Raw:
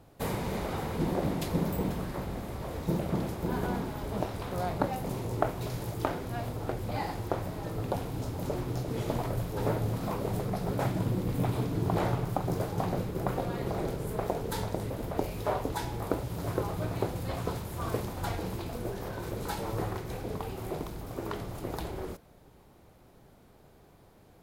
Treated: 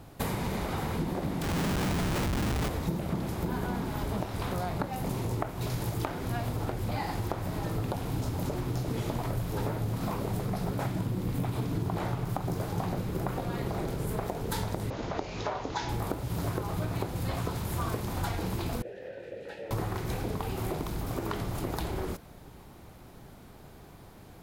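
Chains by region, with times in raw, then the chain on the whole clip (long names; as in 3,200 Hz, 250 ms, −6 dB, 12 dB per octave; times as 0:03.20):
0:01.42–0:02.69: low-pass filter 1,700 Hz + comparator with hysteresis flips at −42 dBFS
0:14.90–0:15.89: Butterworth low-pass 6,900 Hz 96 dB per octave + low-shelf EQ 230 Hz −9.5 dB
0:18.82–0:19.71: formant filter e + low-shelf EQ 160 Hz +6 dB
whole clip: downward compressor, threshold −36 dBFS; parametric band 510 Hz −4.5 dB 1 octave; level +8.5 dB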